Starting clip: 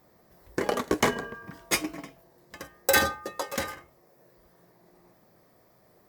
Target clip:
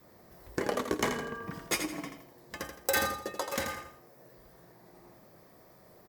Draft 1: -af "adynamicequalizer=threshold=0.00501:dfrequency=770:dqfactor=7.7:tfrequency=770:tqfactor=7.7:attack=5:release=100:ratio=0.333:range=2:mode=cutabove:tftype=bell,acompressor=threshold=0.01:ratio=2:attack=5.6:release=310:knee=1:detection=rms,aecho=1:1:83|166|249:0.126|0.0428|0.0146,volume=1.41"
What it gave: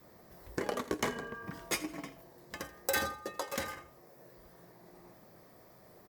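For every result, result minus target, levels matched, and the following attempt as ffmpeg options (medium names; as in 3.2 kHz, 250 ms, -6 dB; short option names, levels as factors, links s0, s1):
echo-to-direct -10.5 dB; compression: peak gain reduction +3 dB
-af "adynamicequalizer=threshold=0.00501:dfrequency=770:dqfactor=7.7:tfrequency=770:tqfactor=7.7:attack=5:release=100:ratio=0.333:range=2:mode=cutabove:tftype=bell,acompressor=threshold=0.01:ratio=2:attack=5.6:release=310:knee=1:detection=rms,aecho=1:1:83|166|249|332:0.422|0.143|0.0487|0.0166,volume=1.41"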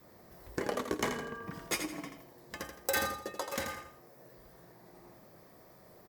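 compression: peak gain reduction +3 dB
-af "adynamicequalizer=threshold=0.00501:dfrequency=770:dqfactor=7.7:tfrequency=770:tqfactor=7.7:attack=5:release=100:ratio=0.333:range=2:mode=cutabove:tftype=bell,acompressor=threshold=0.02:ratio=2:attack=5.6:release=310:knee=1:detection=rms,aecho=1:1:83|166|249|332:0.422|0.143|0.0487|0.0166,volume=1.41"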